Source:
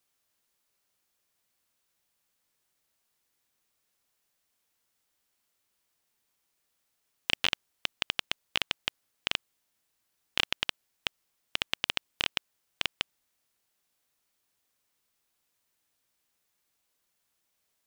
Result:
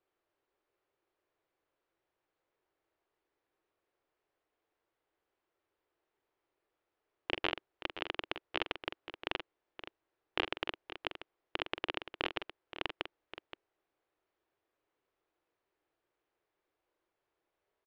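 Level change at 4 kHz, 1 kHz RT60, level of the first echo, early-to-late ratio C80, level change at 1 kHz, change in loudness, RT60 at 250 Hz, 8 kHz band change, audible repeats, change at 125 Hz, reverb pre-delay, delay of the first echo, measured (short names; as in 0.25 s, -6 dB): -9.5 dB, none, -10.0 dB, none, +0.5 dB, -6.5 dB, none, under -20 dB, 2, -4.0 dB, none, 45 ms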